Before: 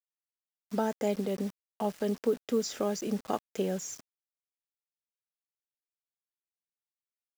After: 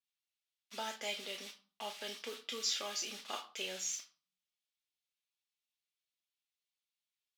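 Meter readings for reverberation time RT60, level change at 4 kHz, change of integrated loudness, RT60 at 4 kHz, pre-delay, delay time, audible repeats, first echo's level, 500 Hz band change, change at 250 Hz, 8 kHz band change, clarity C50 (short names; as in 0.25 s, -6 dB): 0.40 s, +7.0 dB, -7.0 dB, 0.30 s, 4 ms, none, none, none, -16.0 dB, -23.0 dB, +1.5 dB, 12.0 dB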